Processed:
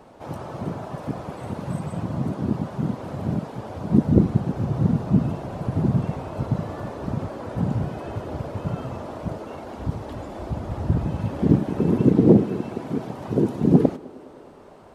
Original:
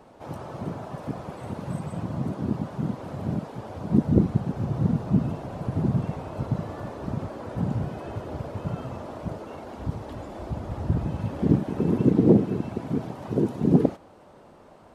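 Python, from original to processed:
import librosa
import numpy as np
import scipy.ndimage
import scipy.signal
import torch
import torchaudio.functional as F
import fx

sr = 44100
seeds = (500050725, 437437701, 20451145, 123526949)

p1 = fx.low_shelf(x, sr, hz=140.0, db=-10.0, at=(12.43, 13.09))
p2 = p1 + fx.echo_banded(p1, sr, ms=103, feedback_pct=82, hz=410.0, wet_db=-20.5, dry=0)
y = p2 * 10.0 ** (3.0 / 20.0)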